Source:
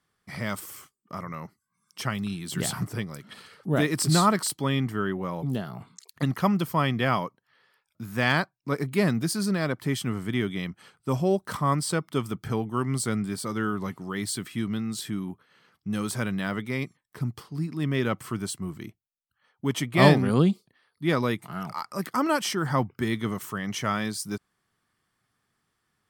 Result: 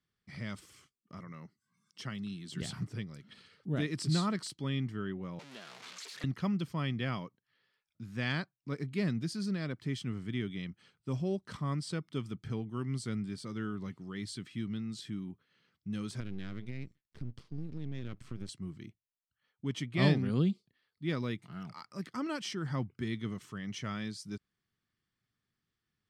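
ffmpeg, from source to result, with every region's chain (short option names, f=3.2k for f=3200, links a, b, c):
-filter_complex "[0:a]asettb=1/sr,asplit=3[a][b][c];[a]atrim=end=1.194[d];[b]atrim=start=1.19:end=2.62,asetpts=PTS-STARTPTS,afade=t=in:d=0.004:c=qsin,afade=t=out:st=1.426:d=0.004:c=qsin,highpass=130,acompressor=mode=upward:threshold=-53dB:ratio=2.5:attack=3.2:release=140:knee=2.83:detection=peak,bandreject=f=2.4k:w=12[e];[c]atrim=start=2.616[f];[d][e]acrossfade=d=0.004:c1=hsin:c2=qsin[g];[g][f]acrossfade=d=0.004:c1=qsin:c2=hsin,asettb=1/sr,asplit=3[h][i][j];[h]atrim=end=5.394[k];[i]atrim=start=5.39:end=6.24,asetpts=PTS-STARTPTS,afade=t=in:d=0.004:c=qsin,afade=t=out:st=0.846:d=0.004:c=qsin,aeval=exprs='val(0)+0.5*0.0422*sgn(val(0))':c=same,highpass=690[l];[j]atrim=start=6.236[m];[k][l]acrossfade=d=0.004:c1=hsin:c2=qsin[n];[n][m]acrossfade=d=0.004:c1=qsin:c2=hsin,asettb=1/sr,asplit=3[o][p][q];[o]atrim=end=16.204[r];[p]atrim=start=16.2:end=18.49,asetpts=PTS-STARTPTS,afade=t=in:d=0.004:c=qsin,afade=t=out:st=2.286:d=0.004:c=qsin,lowshelf=f=230:g=10,acompressor=threshold=-25dB:ratio=10:attack=3.2:release=140:knee=1:detection=peak,aeval=exprs='max(val(0),0)':c=same[s];[q]atrim=start=18.486[t];[r][s]acrossfade=d=0.004:c1=hsin:c2=qsin[u];[u][t]acrossfade=d=0.004:c1=qsin:c2=hsin,lowpass=5k,equalizer=f=870:w=0.64:g=-11.5,volume=-6dB"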